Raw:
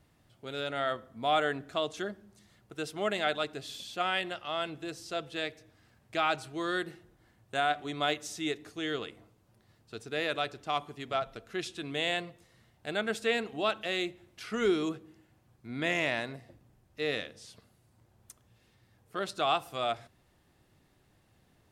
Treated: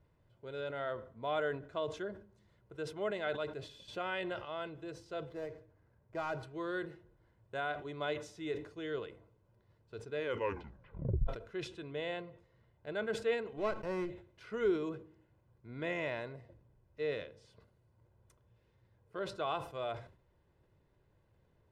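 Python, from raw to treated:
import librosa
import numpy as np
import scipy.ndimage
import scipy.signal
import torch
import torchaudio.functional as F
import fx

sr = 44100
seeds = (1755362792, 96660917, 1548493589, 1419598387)

y = fx.env_flatten(x, sr, amount_pct=50, at=(3.88, 4.45))
y = fx.median_filter(y, sr, points=15, at=(5.29, 6.43))
y = fx.high_shelf(y, sr, hz=7200.0, db=-11.5, at=(11.85, 12.95))
y = fx.running_max(y, sr, window=9, at=(13.57, 14.1))
y = fx.edit(y, sr, fx.tape_stop(start_s=10.16, length_s=1.11), tone=tone)
y = fx.lowpass(y, sr, hz=1100.0, slope=6)
y = y + 0.5 * np.pad(y, (int(2.0 * sr / 1000.0), 0))[:len(y)]
y = fx.sustainer(y, sr, db_per_s=120.0)
y = F.gain(torch.from_numpy(y), -4.5).numpy()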